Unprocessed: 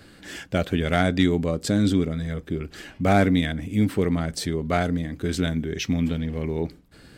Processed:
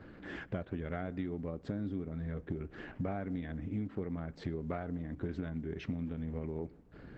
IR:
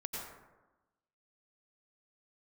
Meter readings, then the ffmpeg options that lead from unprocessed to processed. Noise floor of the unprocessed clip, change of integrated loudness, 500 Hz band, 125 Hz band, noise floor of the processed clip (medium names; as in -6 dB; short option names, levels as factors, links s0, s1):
-50 dBFS, -15.5 dB, -15.5 dB, -14.0 dB, -56 dBFS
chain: -filter_complex "[0:a]lowpass=1600,acompressor=threshold=0.0224:ratio=8,asplit=2[s0][s1];[1:a]atrim=start_sample=2205[s2];[s1][s2]afir=irnorm=-1:irlink=0,volume=0.0668[s3];[s0][s3]amix=inputs=2:normalize=0,volume=0.841" -ar 48000 -c:a libopus -b:a 12k